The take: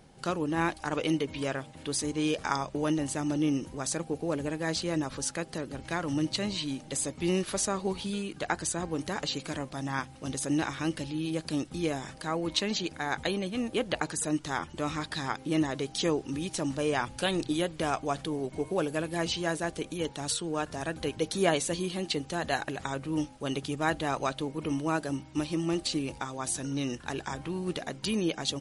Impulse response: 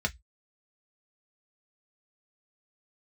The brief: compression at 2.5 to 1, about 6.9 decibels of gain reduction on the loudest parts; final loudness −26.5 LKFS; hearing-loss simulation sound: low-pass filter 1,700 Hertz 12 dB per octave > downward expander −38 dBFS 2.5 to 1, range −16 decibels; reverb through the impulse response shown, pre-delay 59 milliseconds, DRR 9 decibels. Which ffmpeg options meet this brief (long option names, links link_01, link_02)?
-filter_complex "[0:a]acompressor=threshold=-32dB:ratio=2.5,asplit=2[link_01][link_02];[1:a]atrim=start_sample=2205,adelay=59[link_03];[link_02][link_03]afir=irnorm=-1:irlink=0,volume=-16dB[link_04];[link_01][link_04]amix=inputs=2:normalize=0,lowpass=1700,agate=range=-16dB:threshold=-38dB:ratio=2.5,volume=9.5dB"